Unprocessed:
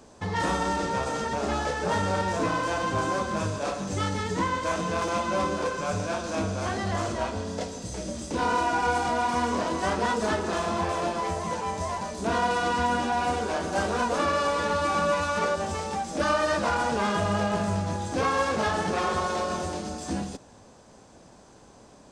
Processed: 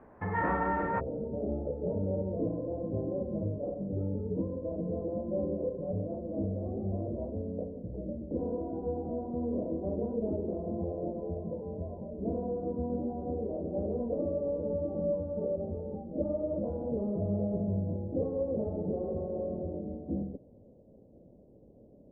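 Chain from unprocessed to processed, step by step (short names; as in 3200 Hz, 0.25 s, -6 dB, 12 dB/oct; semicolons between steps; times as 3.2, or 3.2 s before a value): elliptic low-pass 2000 Hz, stop band 80 dB, from 0.99 s 570 Hz; gain -2.5 dB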